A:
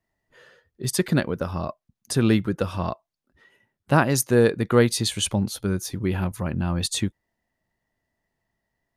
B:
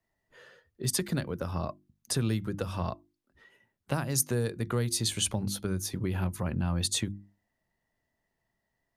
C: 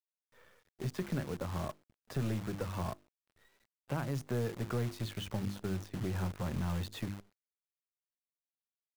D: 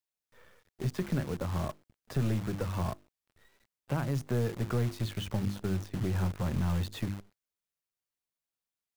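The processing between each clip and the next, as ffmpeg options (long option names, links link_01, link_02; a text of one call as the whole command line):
ffmpeg -i in.wav -filter_complex "[0:a]bandreject=frequency=50:width_type=h:width=6,bandreject=frequency=100:width_type=h:width=6,bandreject=frequency=150:width_type=h:width=6,bandreject=frequency=200:width_type=h:width=6,bandreject=frequency=250:width_type=h:width=6,bandreject=frequency=300:width_type=h:width=6,bandreject=frequency=350:width_type=h:width=6,acrossover=split=120|4900[link_01][link_02][link_03];[link_02]acompressor=threshold=-28dB:ratio=6[link_04];[link_01][link_04][link_03]amix=inputs=3:normalize=0,volume=-2dB" out.wav
ffmpeg -i in.wav -af "lowpass=1900,acrusher=bits=8:dc=4:mix=0:aa=0.000001,aeval=exprs='(tanh(14.1*val(0)+0.3)-tanh(0.3))/14.1':channel_layout=same,volume=-2.5dB" out.wav
ffmpeg -i in.wav -af "lowshelf=frequency=160:gain=4.5,volume=2.5dB" out.wav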